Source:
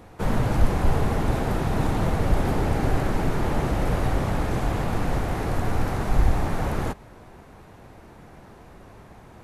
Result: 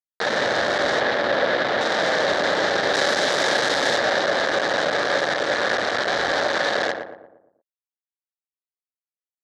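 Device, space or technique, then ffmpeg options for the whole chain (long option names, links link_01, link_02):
hand-held game console: -filter_complex "[0:a]acrusher=bits=3:mix=0:aa=0.000001,highpass=420,equalizer=frequency=570:width_type=q:width=4:gain=9,equalizer=frequency=1000:width_type=q:width=4:gain=-4,equalizer=frequency=1700:width_type=q:width=4:gain=10,equalizer=frequency=2600:width_type=q:width=4:gain=-8,equalizer=frequency=3800:width_type=q:width=4:gain=7,lowpass=frequency=5700:width=0.5412,lowpass=frequency=5700:width=1.3066,asettb=1/sr,asplit=3[link_01][link_02][link_03];[link_01]atrim=end=1.004[link_04];[link_02]atrim=start=1:end=1.81,asetpts=PTS-STARTPTS,afade=type=in:duration=0.004:curve=qsin,afade=type=out:start_time=0.806:duration=0.004:curve=qsin,acrossover=split=4600[link_05][link_06];[link_06]acompressor=threshold=-51dB:ratio=4:attack=1:release=60[link_07];[link_05][link_07]amix=inputs=2:normalize=0[link_08];[link_03]atrim=start=1.806[link_09];[link_04][link_08]acrossfade=duration=0.004:curve1=hsin:curve2=qsin[link_10];[link_10][link_09]acrossfade=duration=0.004:curve1=qsin:curve2=hsin,asettb=1/sr,asplit=3[link_11][link_12][link_13];[link_11]atrim=end=2.944[link_14];[link_12]atrim=start=2.94:end=3.98,asetpts=PTS-STARTPTS,afade=type=in:duration=0.004:curve=qsin,afade=type=out:start_time=1.036:duration=0.004:curve=qsin,aemphasis=mode=production:type=50fm[link_15];[link_13]atrim=start=3.976[link_16];[link_14][link_15]acrossfade=duration=0.004:curve1=hsin:curve2=qsin[link_17];[link_17][link_16]acrossfade=duration=0.004:curve1=qsin:curve2=hsin,asplit=2[link_18][link_19];[link_19]adelay=116,lowpass=frequency=1200:poles=1,volume=-5dB,asplit=2[link_20][link_21];[link_21]adelay=116,lowpass=frequency=1200:poles=1,volume=0.5,asplit=2[link_22][link_23];[link_23]adelay=116,lowpass=frequency=1200:poles=1,volume=0.5,asplit=2[link_24][link_25];[link_25]adelay=116,lowpass=frequency=1200:poles=1,volume=0.5,asplit=2[link_26][link_27];[link_27]adelay=116,lowpass=frequency=1200:poles=1,volume=0.5,asplit=2[link_28][link_29];[link_29]adelay=116,lowpass=frequency=1200:poles=1,volume=0.5[link_30];[link_18][link_20][link_22][link_24][link_26][link_28][link_30]amix=inputs=7:normalize=0,volume=2dB"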